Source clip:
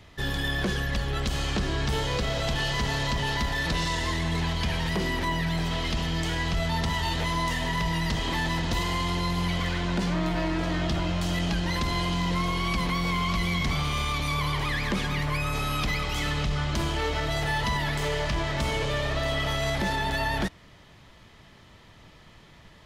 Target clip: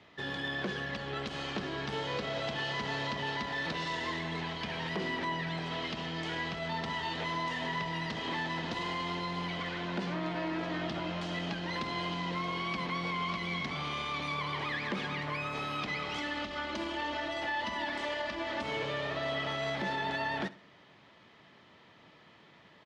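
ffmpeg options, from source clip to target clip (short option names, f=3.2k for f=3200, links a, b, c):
-filter_complex "[0:a]asettb=1/sr,asplit=3[a][b][c];[a]atrim=end=16.184[d];[b]atrim=start=16.18:end=18.63,asetpts=PTS-STARTPTS,afade=t=in:d=0.004:c=qsin,afade=t=out:st=2.446:d=0.004:c=qsin,aecho=1:1:3.4:0.87,atrim=end_sample=108045[e];[c]atrim=start=18.626[f];[d][e]acrossfade=d=0.004:c1=hsin:c2=qsin[g];[g][f]acrossfade=d=0.004:c1=qsin:c2=hsin,alimiter=limit=-20.5dB:level=0:latency=1:release=163,highpass=200,lowpass=3.9k,aecho=1:1:65|130|195:0.119|0.044|0.0163,volume=-3.5dB"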